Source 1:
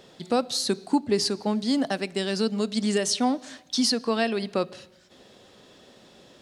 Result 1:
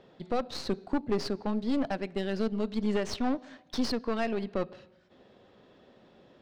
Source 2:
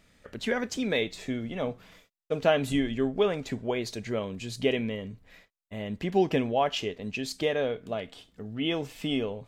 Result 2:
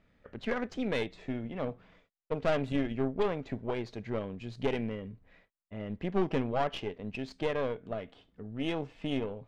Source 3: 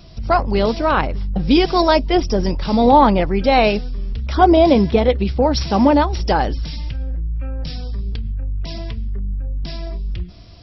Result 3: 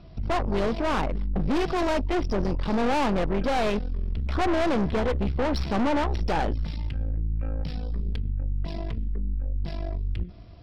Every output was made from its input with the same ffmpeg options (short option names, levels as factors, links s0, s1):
-af "aeval=exprs='(tanh(12.6*val(0)+0.7)-tanh(0.7))/12.6':c=same,adynamicsmooth=sensitivity=1.5:basefreq=2600"